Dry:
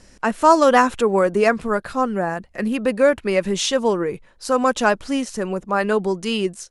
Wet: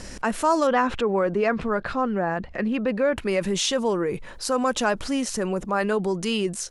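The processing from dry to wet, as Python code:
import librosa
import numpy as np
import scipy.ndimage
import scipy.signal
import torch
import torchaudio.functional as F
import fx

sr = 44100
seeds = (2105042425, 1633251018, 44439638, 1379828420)

y = fx.lowpass(x, sr, hz=3700.0, slope=12, at=(0.67, 3.17))
y = fx.env_flatten(y, sr, amount_pct=50)
y = y * 10.0 ** (-8.5 / 20.0)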